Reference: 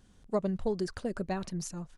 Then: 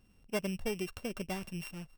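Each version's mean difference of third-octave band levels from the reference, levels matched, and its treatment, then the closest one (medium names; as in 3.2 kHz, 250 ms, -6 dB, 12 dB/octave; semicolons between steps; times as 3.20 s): 7.5 dB: sorted samples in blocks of 16 samples; trim -4.5 dB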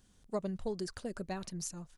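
2.0 dB: treble shelf 3.6 kHz +8.5 dB; trim -6 dB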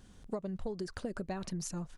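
4.0 dB: compression 12:1, threshold -38 dBFS, peak gain reduction 15 dB; trim +4 dB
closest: second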